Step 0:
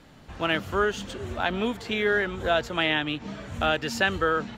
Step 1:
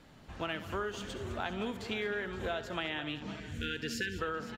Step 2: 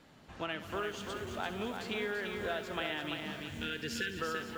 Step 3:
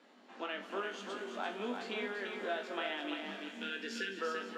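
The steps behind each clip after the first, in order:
spectral selection erased 3.40–4.18 s, 520–1400 Hz; compression, threshold -27 dBFS, peak gain reduction 8.5 dB; on a send: multi-tap echo 68/209/519 ms -13.5/-14.5/-16 dB; on the sum: trim -5.5 dB
bass shelf 81 Hz -10.5 dB; bit-crushed delay 339 ms, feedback 35%, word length 9-bit, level -5 dB; trim -1 dB
elliptic high-pass 220 Hz, stop band 40 dB; distance through air 61 m; on a send: flutter echo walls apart 3.5 m, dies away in 0.21 s; on the sum: trim -1.5 dB

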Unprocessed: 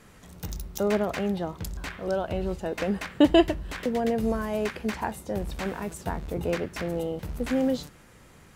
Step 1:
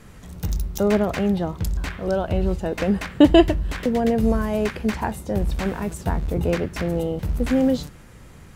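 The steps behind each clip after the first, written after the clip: bass shelf 180 Hz +9 dB; trim +3.5 dB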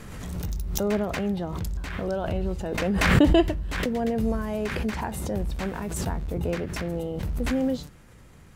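swell ahead of each attack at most 32 dB/s; trim -6.5 dB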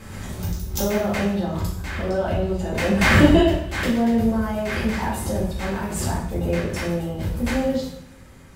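reverberation, pre-delay 3 ms, DRR -6.5 dB; trim -2 dB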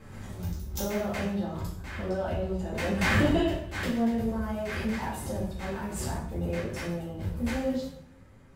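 flange 0.58 Hz, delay 6.3 ms, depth 9.8 ms, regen +55%; saturation -11.5 dBFS, distortion -20 dB; tape noise reduction on one side only decoder only; trim -3.5 dB

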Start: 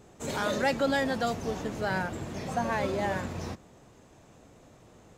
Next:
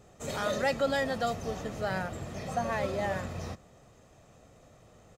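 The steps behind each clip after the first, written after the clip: comb 1.6 ms, depth 38%; trim -2.5 dB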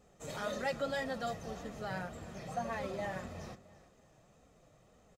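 flange 1.8 Hz, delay 3.7 ms, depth 3 ms, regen -33%; feedback delay 335 ms, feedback 38%, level -19 dB; trim -3.5 dB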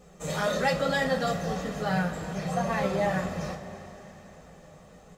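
two-slope reverb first 0.23 s, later 4.7 s, from -20 dB, DRR 1 dB; trim +8.5 dB

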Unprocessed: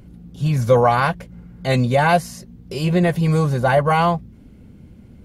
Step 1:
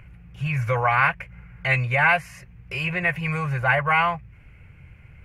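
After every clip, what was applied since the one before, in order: in parallel at +1 dB: compression, threshold -26 dBFS, peak gain reduction 16 dB; on the sum: FFT filter 140 Hz 0 dB, 230 Hz -21 dB, 370 Hz -11 dB, 2.5 kHz +15 dB, 3.6 kHz -10 dB, 6.1 kHz -8 dB; trim -7.5 dB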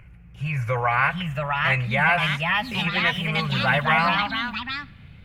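ever faster or slower copies 790 ms, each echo +3 st, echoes 3; on a send at -23 dB: reverberation RT60 0.85 s, pre-delay 25 ms; on the sum: trim -1.5 dB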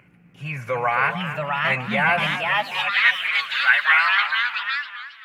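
high-pass sweep 240 Hz -> 1.6 kHz, 2.29–2.98 s; modulated delay 267 ms, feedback 38%, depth 177 cents, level -11 dB

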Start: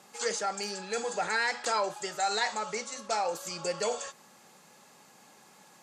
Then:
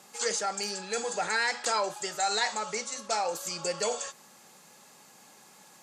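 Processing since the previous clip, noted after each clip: treble shelf 4.2 kHz +5.5 dB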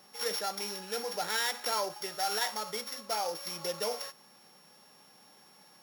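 sorted samples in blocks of 8 samples; trim -3.5 dB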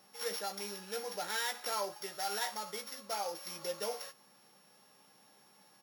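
doubling 15 ms -7 dB; trim -5 dB

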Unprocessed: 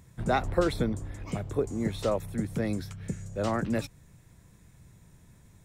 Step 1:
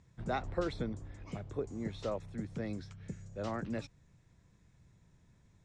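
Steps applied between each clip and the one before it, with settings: low-pass 6.8 kHz 24 dB/octave; trim -9 dB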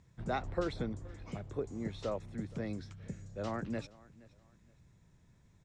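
feedback delay 471 ms, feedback 30%, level -22 dB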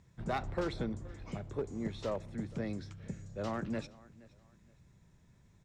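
one-sided clip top -33 dBFS; reverberation RT60 0.65 s, pre-delay 5 ms, DRR 18.5 dB; trim +1 dB

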